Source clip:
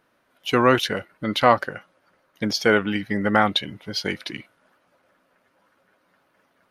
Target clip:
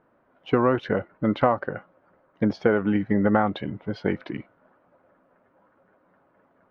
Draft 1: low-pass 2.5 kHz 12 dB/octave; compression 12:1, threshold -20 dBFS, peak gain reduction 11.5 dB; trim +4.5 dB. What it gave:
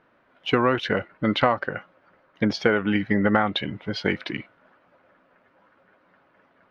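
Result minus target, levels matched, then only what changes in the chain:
2 kHz band +6.0 dB
change: low-pass 1.1 kHz 12 dB/octave

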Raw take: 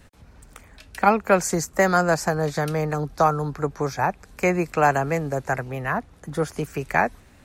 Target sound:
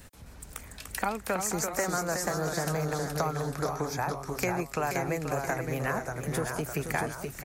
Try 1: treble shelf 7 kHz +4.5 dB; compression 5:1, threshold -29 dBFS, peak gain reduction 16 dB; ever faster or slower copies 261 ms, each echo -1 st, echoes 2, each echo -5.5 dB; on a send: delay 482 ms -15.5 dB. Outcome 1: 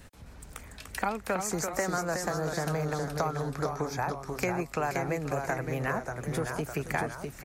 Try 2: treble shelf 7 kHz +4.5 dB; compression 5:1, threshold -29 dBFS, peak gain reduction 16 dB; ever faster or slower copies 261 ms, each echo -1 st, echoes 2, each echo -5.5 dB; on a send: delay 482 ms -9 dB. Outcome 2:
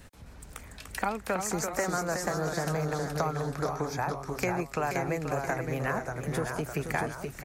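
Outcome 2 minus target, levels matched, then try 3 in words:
8 kHz band -3.0 dB
treble shelf 7 kHz +12.5 dB; compression 5:1, threshold -29 dBFS, peak gain reduction 16 dB; ever faster or slower copies 261 ms, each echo -1 st, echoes 2, each echo -5.5 dB; on a send: delay 482 ms -9 dB

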